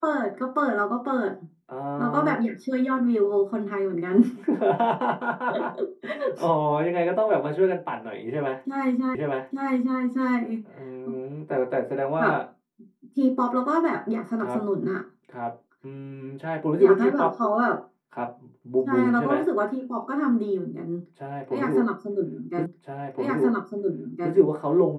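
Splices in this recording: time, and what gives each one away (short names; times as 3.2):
9.15 repeat of the last 0.86 s
22.66 repeat of the last 1.67 s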